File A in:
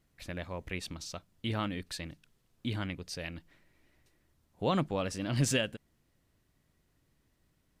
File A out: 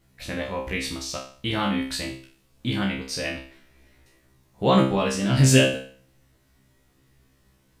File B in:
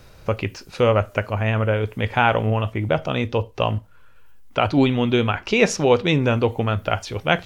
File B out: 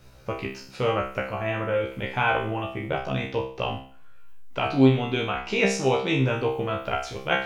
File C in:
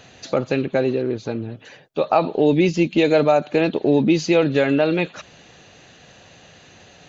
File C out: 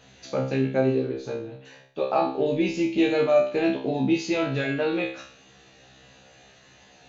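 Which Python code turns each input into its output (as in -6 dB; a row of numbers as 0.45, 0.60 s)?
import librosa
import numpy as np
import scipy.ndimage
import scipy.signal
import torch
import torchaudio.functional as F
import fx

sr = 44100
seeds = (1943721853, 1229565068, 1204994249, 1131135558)

y = fx.comb_fb(x, sr, f0_hz=66.0, decay_s=0.46, harmonics='all', damping=0.0, mix_pct=100)
y = y * 10.0 ** (-26 / 20.0) / np.sqrt(np.mean(np.square(y)))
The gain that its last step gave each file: +20.5, +5.5, +4.0 dB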